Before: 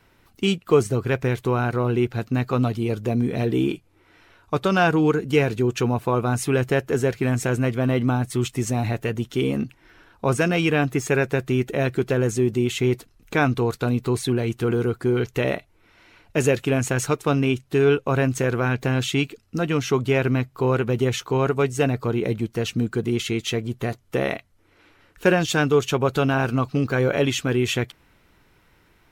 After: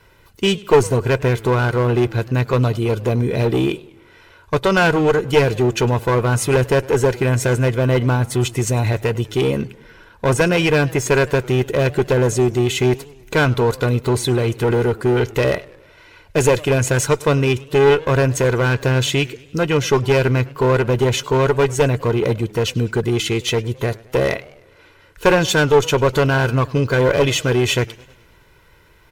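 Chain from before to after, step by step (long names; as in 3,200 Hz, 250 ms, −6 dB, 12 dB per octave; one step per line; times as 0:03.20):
comb filter 2 ms, depth 53%
asymmetric clip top −20 dBFS
feedback echo with a swinging delay time 103 ms, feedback 54%, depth 191 cents, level −22 dB
level +5.5 dB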